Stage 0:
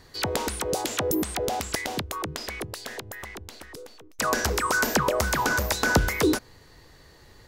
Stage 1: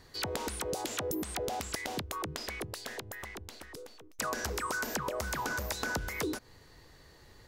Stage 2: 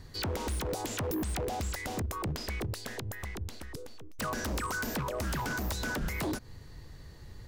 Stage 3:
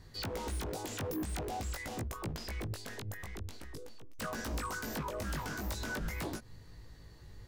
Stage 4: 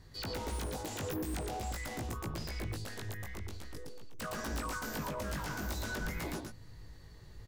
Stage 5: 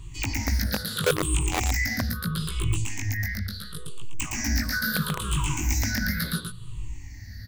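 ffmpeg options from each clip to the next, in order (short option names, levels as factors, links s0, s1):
-af "acompressor=threshold=0.0447:ratio=6,volume=0.596"
-af "bass=f=250:g=12,treble=f=4000:g=1,aeval=exprs='0.0422*(abs(mod(val(0)/0.0422+3,4)-2)-1)':c=same"
-af "flanger=delay=17.5:depth=2.3:speed=0.46,volume=0.841"
-af "aecho=1:1:114:0.708,volume=0.841"
-filter_complex "[0:a]afftfilt=real='re*pow(10,22/40*sin(2*PI*(0.67*log(max(b,1)*sr/1024/100)/log(2)-(-0.74)*(pts-256)/sr)))':imag='im*pow(10,22/40*sin(2*PI*(0.67*log(max(b,1)*sr/1024/100)/log(2)-(-0.74)*(pts-256)/sr)))':win_size=1024:overlap=0.75,acrossover=split=290|1200[s0][s1][s2];[s1]acrusher=bits=4:mix=0:aa=0.000001[s3];[s0][s3][s2]amix=inputs=3:normalize=0,volume=2.82"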